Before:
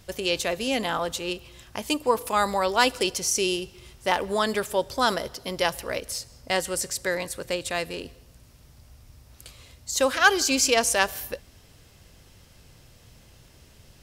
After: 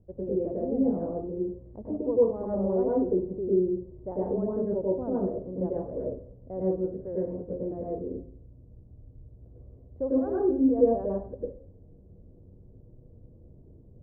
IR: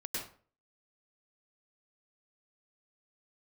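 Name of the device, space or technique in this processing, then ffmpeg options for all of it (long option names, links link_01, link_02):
next room: -filter_complex "[0:a]lowpass=frequency=530:width=0.5412,lowpass=frequency=530:width=1.3066[link_01];[1:a]atrim=start_sample=2205[link_02];[link_01][link_02]afir=irnorm=-1:irlink=0"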